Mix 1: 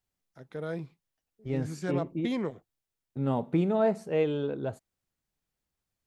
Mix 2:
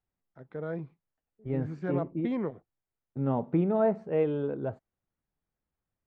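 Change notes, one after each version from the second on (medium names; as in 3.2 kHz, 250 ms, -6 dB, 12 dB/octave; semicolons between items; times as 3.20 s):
master: add low-pass 1.7 kHz 12 dB/octave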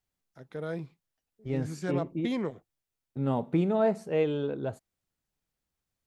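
master: remove low-pass 1.7 kHz 12 dB/octave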